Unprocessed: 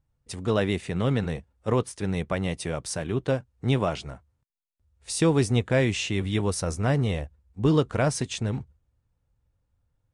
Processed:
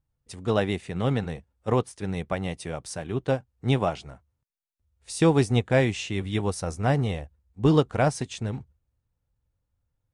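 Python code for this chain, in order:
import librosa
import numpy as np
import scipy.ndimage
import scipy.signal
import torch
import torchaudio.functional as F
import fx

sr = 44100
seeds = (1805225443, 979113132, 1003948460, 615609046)

y = fx.dynamic_eq(x, sr, hz=780.0, q=5.4, threshold_db=-47.0, ratio=4.0, max_db=7)
y = fx.upward_expand(y, sr, threshold_db=-31.0, expansion=1.5)
y = y * librosa.db_to_amplitude(2.0)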